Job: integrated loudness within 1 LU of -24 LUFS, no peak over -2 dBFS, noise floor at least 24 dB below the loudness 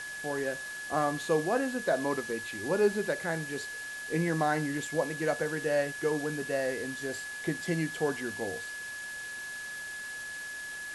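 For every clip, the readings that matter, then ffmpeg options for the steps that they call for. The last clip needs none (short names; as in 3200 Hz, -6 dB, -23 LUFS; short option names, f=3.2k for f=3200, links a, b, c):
steady tone 1700 Hz; tone level -38 dBFS; noise floor -40 dBFS; noise floor target -56 dBFS; loudness -32.0 LUFS; peak -14.5 dBFS; loudness target -24.0 LUFS
-> -af "bandreject=f=1.7k:w=30"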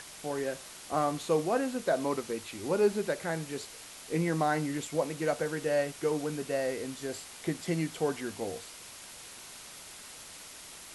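steady tone none; noise floor -48 dBFS; noise floor target -56 dBFS
-> -af "afftdn=nr=8:nf=-48"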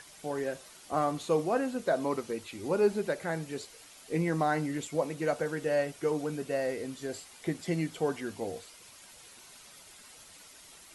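noise floor -54 dBFS; noise floor target -57 dBFS
-> -af "afftdn=nr=6:nf=-54"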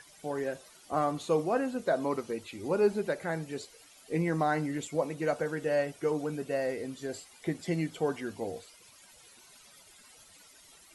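noise floor -57 dBFS; loudness -32.5 LUFS; peak -15.0 dBFS; loudness target -24.0 LUFS
-> -af "volume=8.5dB"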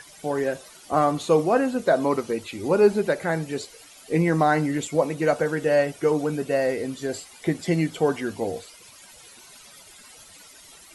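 loudness -24.0 LUFS; peak -6.5 dBFS; noise floor -49 dBFS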